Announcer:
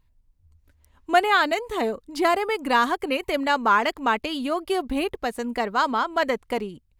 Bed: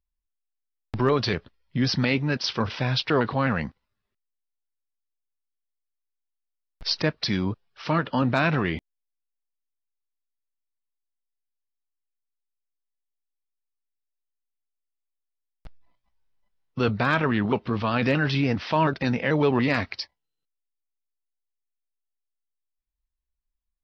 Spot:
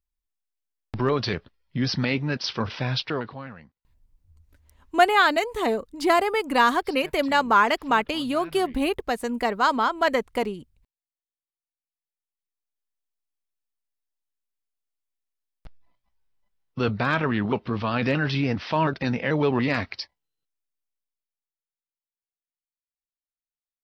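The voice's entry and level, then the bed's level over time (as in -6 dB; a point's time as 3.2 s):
3.85 s, +1.0 dB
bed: 2.99 s -1.5 dB
3.67 s -21.5 dB
11.59 s -21.5 dB
12.89 s -1 dB
20.91 s -1 dB
22.1 s -27.5 dB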